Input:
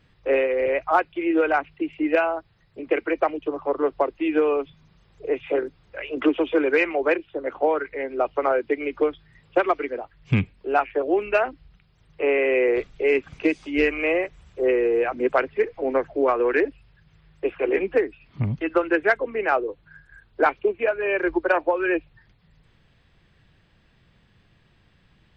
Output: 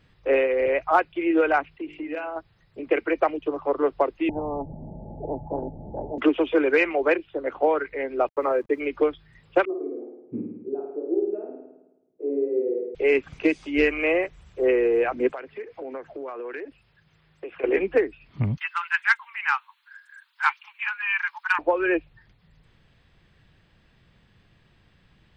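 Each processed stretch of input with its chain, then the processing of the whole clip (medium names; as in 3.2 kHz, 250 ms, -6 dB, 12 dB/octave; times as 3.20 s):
1.67–2.36 s: compression 3:1, threshold -30 dBFS + de-hum 50.51 Hz, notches 34
4.29–6.18 s: rippled Chebyshev low-pass 880 Hz, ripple 9 dB + spectrum-flattening compressor 4:1
8.28–8.80 s: send-on-delta sampling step -45.5 dBFS + low-pass 1.6 kHz 6 dB/octave + comb of notches 730 Hz
9.65–12.95 s: Butterworth band-pass 320 Hz, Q 1.8 + chorus 1.2 Hz, delay 16 ms, depth 4.8 ms + flutter echo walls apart 9.2 m, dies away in 0.98 s
15.30–17.64 s: high-pass 210 Hz 6 dB/octave + compression, threshold -32 dBFS
18.57–21.59 s: steep high-pass 870 Hz 96 dB/octave + tilt EQ +3 dB/octave
whole clip: none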